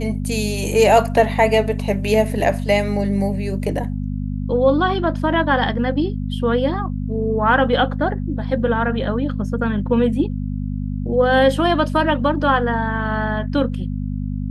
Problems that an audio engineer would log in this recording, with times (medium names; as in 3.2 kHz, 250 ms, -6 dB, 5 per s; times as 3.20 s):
hum 50 Hz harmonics 5 -24 dBFS